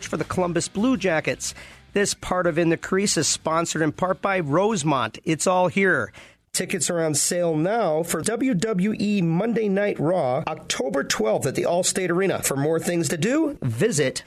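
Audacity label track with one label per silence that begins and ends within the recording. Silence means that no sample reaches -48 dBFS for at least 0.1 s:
6.330000	6.540000	silence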